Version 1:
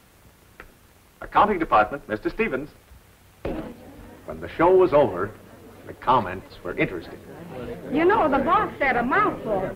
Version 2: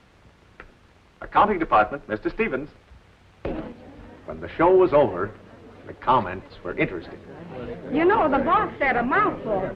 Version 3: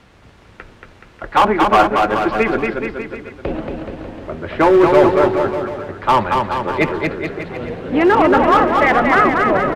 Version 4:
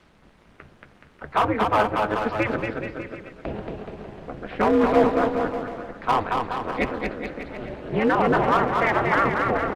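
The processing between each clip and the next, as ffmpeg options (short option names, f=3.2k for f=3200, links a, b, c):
-af "lowpass=4.4k"
-filter_complex "[0:a]asoftclip=type=hard:threshold=-13.5dB,asplit=2[a][b];[b]aecho=0:1:230|425.5|591.7|732.9|853:0.631|0.398|0.251|0.158|0.1[c];[a][c]amix=inputs=2:normalize=0,volume=6.5dB"
-filter_complex "[0:a]aeval=exprs='val(0)*sin(2*PI*110*n/s)':c=same,asplit=2[a][b];[b]adelay=240,highpass=300,lowpass=3.4k,asoftclip=type=hard:threshold=-12dB,volume=-17dB[c];[a][c]amix=inputs=2:normalize=0,volume=-5dB" -ar 48000 -c:a libopus -b:a 48k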